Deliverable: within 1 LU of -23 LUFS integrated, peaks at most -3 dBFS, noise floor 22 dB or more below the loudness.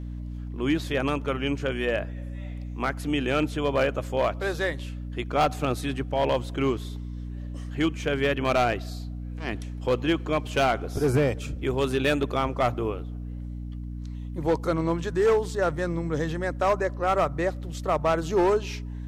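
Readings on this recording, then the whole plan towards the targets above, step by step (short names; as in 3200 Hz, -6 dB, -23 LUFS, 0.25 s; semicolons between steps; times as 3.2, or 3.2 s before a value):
clipped 1.2%; flat tops at -16.5 dBFS; hum 60 Hz; harmonics up to 300 Hz; hum level -32 dBFS; loudness -26.5 LUFS; peak -16.5 dBFS; loudness target -23.0 LUFS
-> clip repair -16.5 dBFS; notches 60/120/180/240/300 Hz; gain +3.5 dB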